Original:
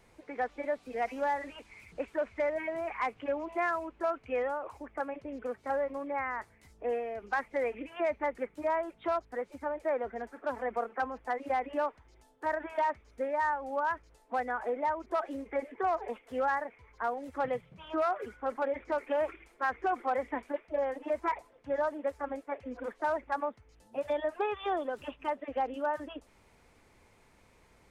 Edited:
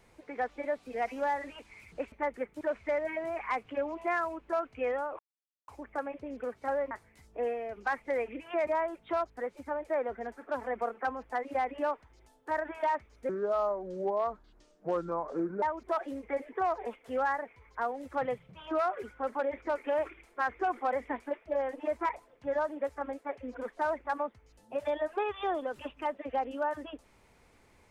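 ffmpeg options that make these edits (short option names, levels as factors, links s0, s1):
-filter_complex "[0:a]asplit=8[s0][s1][s2][s3][s4][s5][s6][s7];[s0]atrim=end=2.122[s8];[s1]atrim=start=8.128:end=8.622[s9];[s2]atrim=start=2.118:end=4.7,asetpts=PTS-STARTPTS,afade=t=out:st=2.578:d=0.004:c=hsin,apad=pad_dur=0.49[s10];[s3]atrim=start=4.7:end=5.932,asetpts=PTS-STARTPTS,afade=t=in:d=0.004:c=hsin[s11];[s4]atrim=start=6.368:end=8.132[s12];[s5]atrim=start=8.618:end=13.244[s13];[s6]atrim=start=13.24:end=14.85,asetpts=PTS-STARTPTS,asetrate=30429,aresample=44100,atrim=end_sample=102900,asetpts=PTS-STARTPTS[s14];[s7]atrim=start=14.846[s15];[s8][s9]acrossfade=d=0.004:c1=hsin:c2=hsin[s16];[s10][s11]concat=n=2:v=0:a=1[s17];[s16][s17]acrossfade=d=0.004:c1=hsin:c2=hsin[s18];[s18][s12]acrossfade=d=0.004:c1=hsin:c2=hsin[s19];[s19][s13]acrossfade=d=0.004:c1=hsin:c2=hsin[s20];[s20][s14]acrossfade=d=0.004:c1=hsin:c2=hsin[s21];[s21][s15]acrossfade=d=0.004:c1=hsin:c2=hsin"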